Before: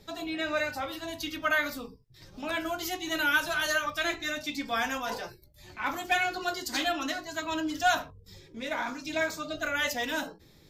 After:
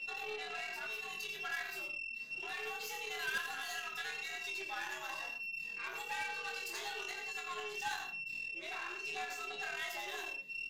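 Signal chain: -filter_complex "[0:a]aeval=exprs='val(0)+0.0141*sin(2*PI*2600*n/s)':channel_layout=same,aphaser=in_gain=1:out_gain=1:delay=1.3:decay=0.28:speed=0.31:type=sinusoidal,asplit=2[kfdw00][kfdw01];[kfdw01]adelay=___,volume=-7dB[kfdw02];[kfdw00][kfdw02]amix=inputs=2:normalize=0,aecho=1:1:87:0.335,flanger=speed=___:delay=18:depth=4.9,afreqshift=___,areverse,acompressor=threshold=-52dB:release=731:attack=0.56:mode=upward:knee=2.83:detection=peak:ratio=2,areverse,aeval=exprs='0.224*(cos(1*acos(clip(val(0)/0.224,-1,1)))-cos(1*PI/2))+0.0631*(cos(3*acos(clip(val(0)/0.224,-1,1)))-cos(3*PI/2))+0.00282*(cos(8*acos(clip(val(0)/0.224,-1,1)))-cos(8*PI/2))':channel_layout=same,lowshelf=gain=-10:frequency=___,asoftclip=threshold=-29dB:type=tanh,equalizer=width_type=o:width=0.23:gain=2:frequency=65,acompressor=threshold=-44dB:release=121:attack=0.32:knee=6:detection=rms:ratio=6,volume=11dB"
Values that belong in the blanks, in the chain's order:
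25, 1.1, 110, 490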